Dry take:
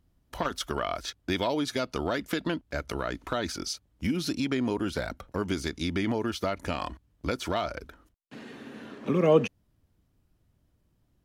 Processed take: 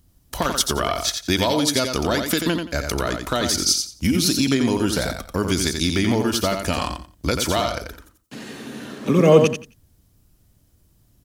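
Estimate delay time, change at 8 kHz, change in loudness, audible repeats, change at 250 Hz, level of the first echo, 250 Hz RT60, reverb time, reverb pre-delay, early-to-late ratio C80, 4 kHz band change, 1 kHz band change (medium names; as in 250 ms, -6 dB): 88 ms, +18.0 dB, +9.5 dB, 3, +9.0 dB, -6.0 dB, no reverb, no reverb, no reverb, no reverb, +13.0 dB, +7.5 dB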